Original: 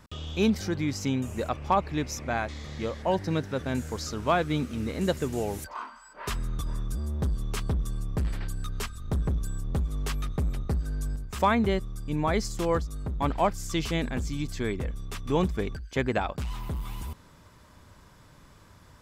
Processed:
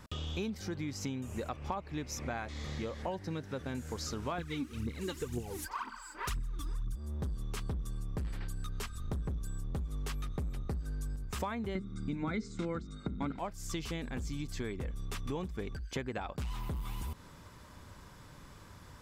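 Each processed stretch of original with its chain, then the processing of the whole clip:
4.38–6.96 s: phaser 2 Hz, delay 3.7 ms, feedback 72% + peaking EQ 620 Hz -11 dB 0.59 oct
11.75–13.39 s: steep low-pass 8.9 kHz 72 dB/octave + hum notches 50/100/150/200/250/300/350/400/450 Hz + small resonant body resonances 220/1400/2100/3700 Hz, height 16 dB, ringing for 20 ms
whole clip: band-stop 640 Hz, Q 18; compression 6:1, threshold -36 dBFS; trim +1 dB

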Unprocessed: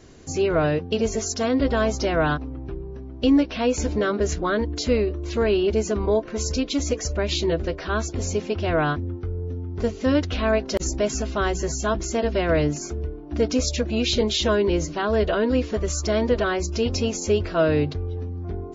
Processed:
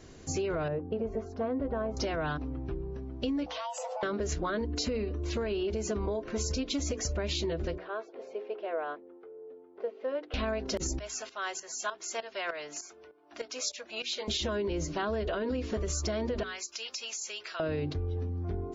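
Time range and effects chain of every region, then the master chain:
0.68–1.97 s: low-pass 1 kHz + bass shelf 390 Hz -4.5 dB
3.46–4.03 s: compression 10:1, threshold -31 dBFS + frequency shift +440 Hz
4.57–5.21 s: band-stop 3.4 kHz, Q 11 + comb 4.1 ms, depth 42%
7.78–10.34 s: ladder high-pass 410 Hz, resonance 45% + distance through air 370 m
10.99–14.28 s: high-pass 850 Hz + tremolo saw up 3.3 Hz, depth 80%
16.43–17.60 s: high-pass 1.5 kHz + treble shelf 6.4 kHz +7.5 dB + compression 5:1, threshold -32 dBFS
whole clip: hum notches 60/120/180/240/300/360/420 Hz; peak limiter -17 dBFS; compression, threshold -26 dBFS; trim -2.5 dB

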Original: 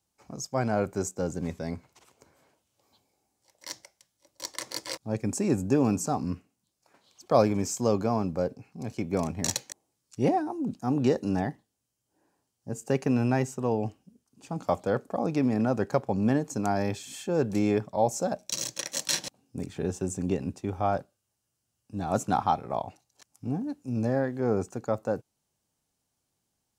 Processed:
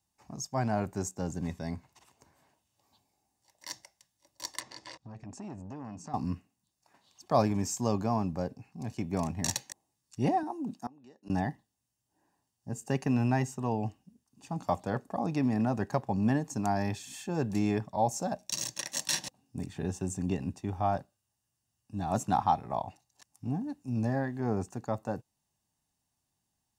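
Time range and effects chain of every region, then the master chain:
4.60–6.14 s: compression 3:1, threshold -37 dBFS + distance through air 99 m + transformer saturation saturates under 490 Hz
10.43–11.30 s: high-pass 220 Hz + inverted gate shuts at -22 dBFS, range -26 dB
whole clip: band-stop 510 Hz, Q 12; comb 1.1 ms, depth 40%; trim -3 dB

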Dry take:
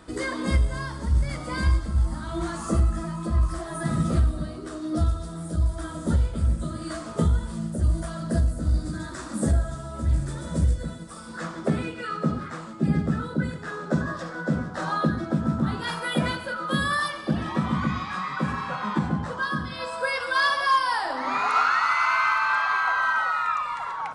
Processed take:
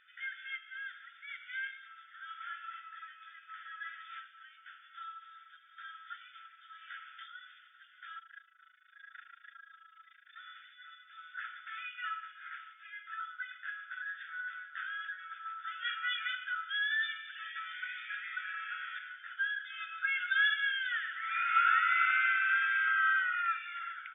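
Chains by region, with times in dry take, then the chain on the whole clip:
8.19–10.36 s: treble shelf 3.5 kHz -5 dB + comb of notches 260 Hz + AM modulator 27 Hz, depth 85%
whole clip: FFT band-pass 1.3–3.6 kHz; level rider gain up to 4 dB; trim -7.5 dB

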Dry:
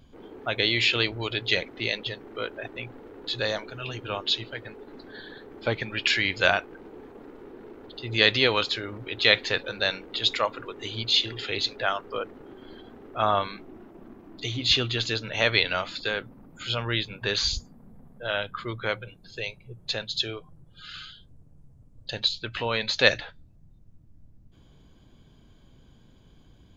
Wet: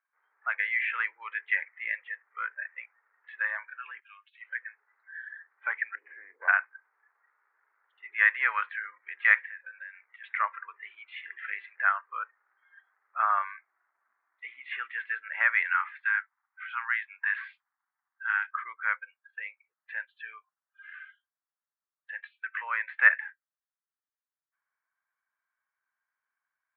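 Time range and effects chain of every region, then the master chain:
4.00–4.41 s: band-pass filter 4.2 kHz, Q 3.1 + compressor with a negative ratio -31 dBFS, ratio -0.5
5.95–6.48 s: one-bit delta coder 64 kbps, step -30.5 dBFS + resonant low-pass 440 Hz, resonance Q 1.7 + loudspeaker Doppler distortion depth 0.34 ms
9.45–10.24 s: distance through air 160 m + compression 16:1, threshold -36 dBFS
15.66–18.64 s: steep high-pass 740 Hz 72 dB/octave + treble shelf 4.7 kHz +8 dB
whole clip: high-pass 1.3 kHz 24 dB/octave; spectral noise reduction 16 dB; steep low-pass 2 kHz 48 dB/octave; trim +6 dB

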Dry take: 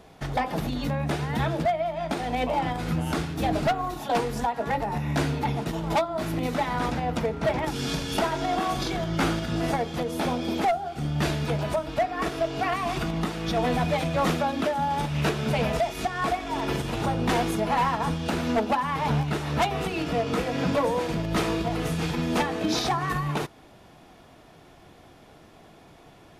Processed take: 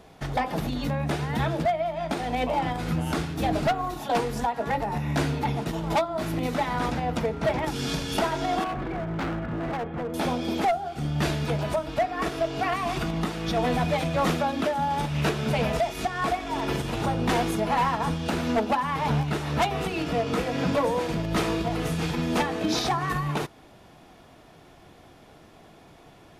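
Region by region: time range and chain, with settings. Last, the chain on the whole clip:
8.64–10.14 s: low-pass 2 kHz 24 dB/octave + hard clipper -27 dBFS
whole clip: none

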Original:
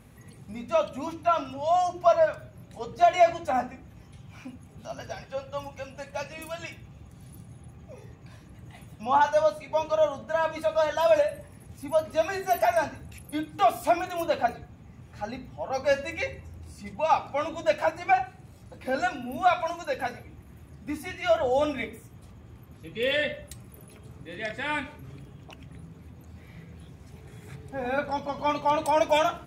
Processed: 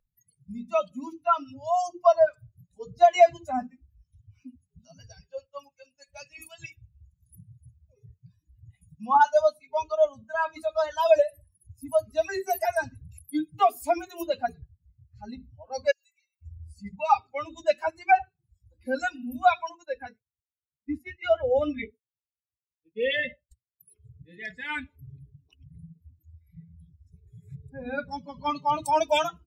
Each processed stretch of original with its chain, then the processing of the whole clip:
5.46–6.09 s: bass shelf 140 Hz -7.5 dB + three bands expanded up and down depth 70%
15.91–16.42 s: pre-emphasis filter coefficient 0.97 + compression, threshold -50 dBFS
19.69–23.80 s: expander -37 dBFS + treble shelf 4.7 kHz -9 dB
whole clip: expander on every frequency bin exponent 2; spectral noise reduction 22 dB; trim +5 dB

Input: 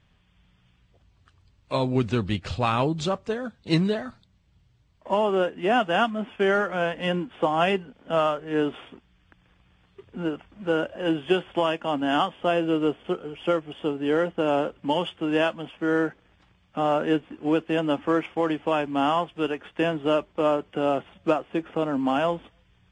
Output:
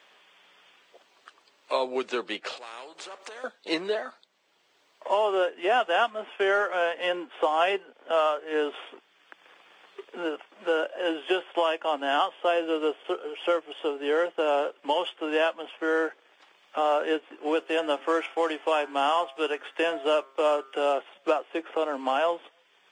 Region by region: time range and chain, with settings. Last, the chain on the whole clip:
2.57–3.44 s: compression 8:1, threshold -39 dBFS + spectrum-flattening compressor 2:1
17.57–20.93 s: treble shelf 4.4 kHz +7.5 dB + de-hum 134.4 Hz, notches 18
whole clip: high-pass 400 Hz 24 dB/octave; three bands compressed up and down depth 40%

